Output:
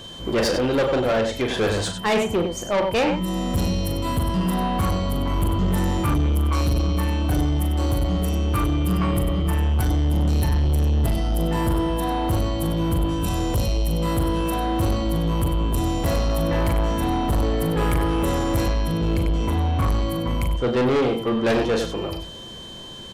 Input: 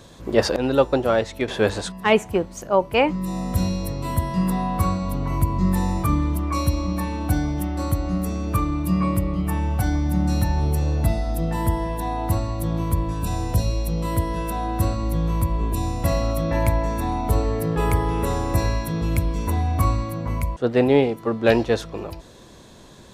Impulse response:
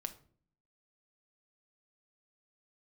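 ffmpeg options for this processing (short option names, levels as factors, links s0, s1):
-filter_complex "[0:a]aeval=exprs='val(0)+0.00631*sin(2*PI*3100*n/s)':c=same,aecho=1:1:40|97:0.422|0.316,asplit=2[s0][s1];[1:a]atrim=start_sample=2205[s2];[s1][s2]afir=irnorm=-1:irlink=0,volume=0.668[s3];[s0][s3]amix=inputs=2:normalize=0,asoftclip=type=tanh:threshold=0.15,asettb=1/sr,asplit=3[s4][s5][s6];[s4]atrim=end=18.684[s7];[s5]atrim=start=18.68:end=19.88,asetpts=PTS-STARTPTS,afade=t=in:d=0.004:c=qsin,afade=t=out:st=1.196:d=0.004:c=qsin,highshelf=f=7800:g=-10.5[s8];[s6]atrim=start=19.876[s9];[s7][s8]acrossfade=d=0.004:c1=hsin:c2=qsin[s10];[s10][s9]acrossfade=d=0.004:c1=qsin:c2=hsin"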